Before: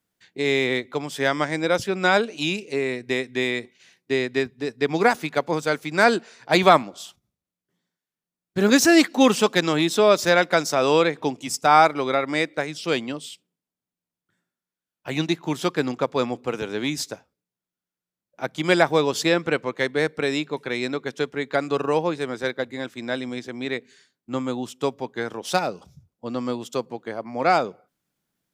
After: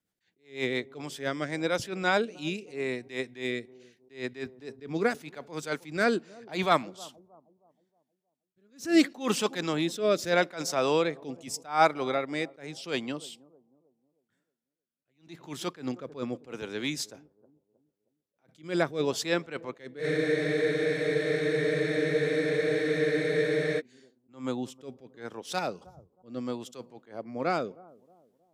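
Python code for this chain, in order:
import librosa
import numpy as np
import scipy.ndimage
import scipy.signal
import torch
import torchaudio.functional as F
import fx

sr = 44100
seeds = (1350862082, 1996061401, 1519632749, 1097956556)

p1 = fx.rotary_switch(x, sr, hz=8.0, then_hz=0.8, switch_at_s=0.37)
p2 = p1 + fx.echo_bbd(p1, sr, ms=314, stages=2048, feedback_pct=38, wet_db=-23, dry=0)
p3 = fx.spec_freeze(p2, sr, seeds[0], at_s=20.02, hold_s=3.77)
p4 = fx.attack_slew(p3, sr, db_per_s=180.0)
y = p4 * 10.0 ** (-4.0 / 20.0)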